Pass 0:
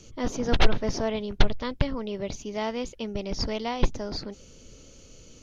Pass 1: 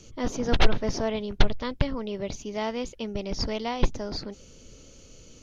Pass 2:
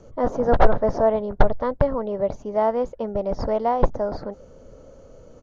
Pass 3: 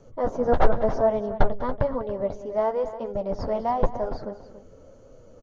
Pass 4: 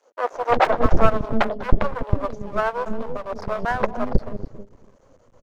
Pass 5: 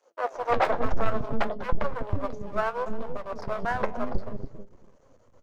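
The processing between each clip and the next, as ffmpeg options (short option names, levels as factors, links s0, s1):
-af anull
-af "firequalizer=gain_entry='entry(360,0);entry(550,11);entry(1700,-1);entry(2500,-16)':delay=0.05:min_phase=1,volume=1.33"
-af "flanger=delay=7.1:depth=5.9:regen=-29:speed=0.98:shape=triangular,aecho=1:1:198|282:0.133|0.2"
-filter_complex "[0:a]aeval=exprs='0.631*(cos(1*acos(clip(val(0)/0.631,-1,1)))-cos(1*PI/2))+0.251*(cos(6*acos(clip(val(0)/0.631,-1,1)))-cos(6*PI/2))':c=same,aeval=exprs='max(val(0),0)':c=same,acrossover=split=420[s0][s1];[s0]adelay=320[s2];[s2][s1]amix=inputs=2:normalize=0"
-af "flanger=delay=5.5:depth=6.2:regen=70:speed=0.63:shape=sinusoidal,asoftclip=type=tanh:threshold=0.224"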